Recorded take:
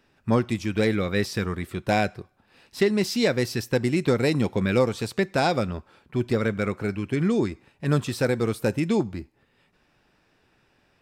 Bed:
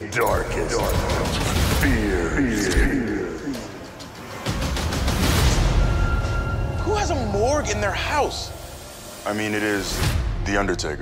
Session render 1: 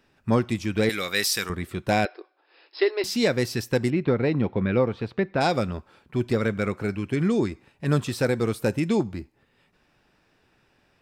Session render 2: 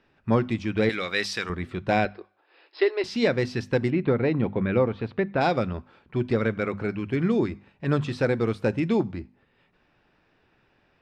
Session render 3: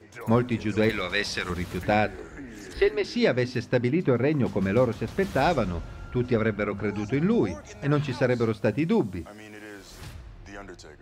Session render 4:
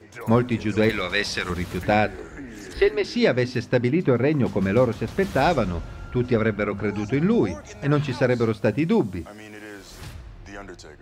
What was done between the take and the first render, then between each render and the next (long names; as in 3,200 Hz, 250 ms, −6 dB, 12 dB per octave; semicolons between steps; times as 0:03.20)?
0:00.89–0:01.50: spectral tilt +4.5 dB per octave; 0:02.05–0:03.04: linear-phase brick-wall band-pass 290–5,400 Hz; 0:03.90–0:05.41: high-frequency loss of the air 350 metres
low-pass filter 3,600 Hz 12 dB per octave; mains-hum notches 50/100/150/200/250 Hz
mix in bed −20 dB
level +3 dB